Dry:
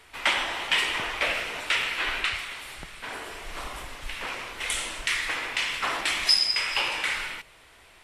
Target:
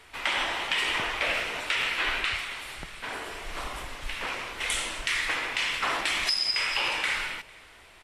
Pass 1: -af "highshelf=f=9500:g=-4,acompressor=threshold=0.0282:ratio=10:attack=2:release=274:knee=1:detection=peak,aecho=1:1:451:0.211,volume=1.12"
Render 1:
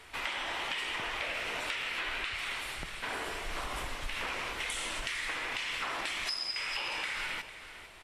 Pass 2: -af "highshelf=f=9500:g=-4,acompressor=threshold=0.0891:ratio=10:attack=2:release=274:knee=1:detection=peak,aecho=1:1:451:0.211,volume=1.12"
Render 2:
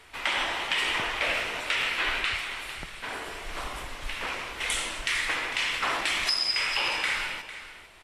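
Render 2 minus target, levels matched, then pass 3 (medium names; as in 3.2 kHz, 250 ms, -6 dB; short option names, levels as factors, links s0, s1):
echo-to-direct +11.5 dB
-af "highshelf=f=9500:g=-4,acompressor=threshold=0.0891:ratio=10:attack=2:release=274:knee=1:detection=peak,aecho=1:1:451:0.0562,volume=1.12"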